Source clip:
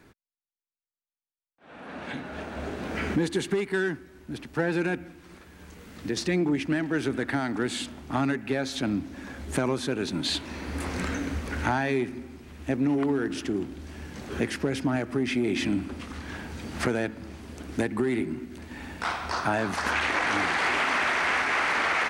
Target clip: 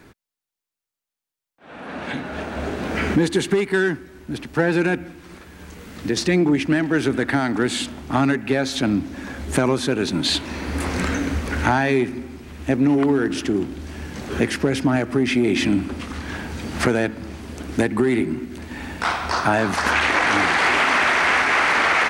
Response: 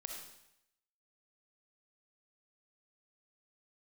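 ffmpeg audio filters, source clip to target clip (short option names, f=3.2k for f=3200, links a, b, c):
-af "volume=7.5dB"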